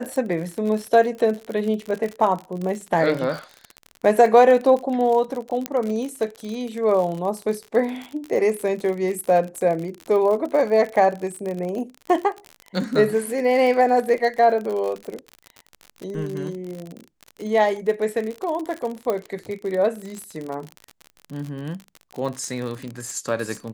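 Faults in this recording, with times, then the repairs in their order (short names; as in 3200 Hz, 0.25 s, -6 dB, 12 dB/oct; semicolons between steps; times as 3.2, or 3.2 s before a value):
crackle 50/s -27 dBFS
5.66 pop -8 dBFS
19.1 pop -12 dBFS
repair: de-click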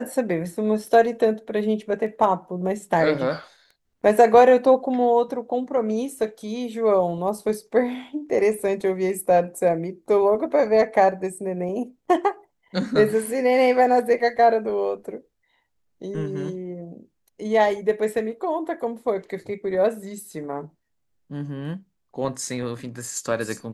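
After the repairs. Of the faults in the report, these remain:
none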